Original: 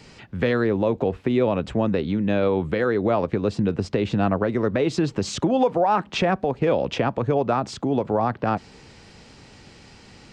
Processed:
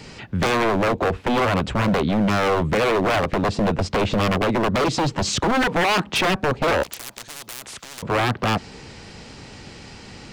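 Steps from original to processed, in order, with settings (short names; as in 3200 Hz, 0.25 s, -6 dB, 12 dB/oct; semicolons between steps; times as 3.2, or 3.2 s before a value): wavefolder -21 dBFS; 6.83–8.03 spectral compressor 10:1; gain +7 dB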